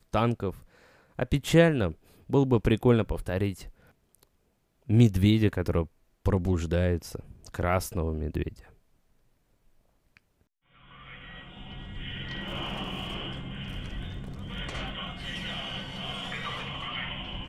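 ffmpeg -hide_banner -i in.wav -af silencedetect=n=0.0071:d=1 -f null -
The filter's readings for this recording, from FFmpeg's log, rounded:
silence_start: 8.61
silence_end: 10.17 | silence_duration: 1.56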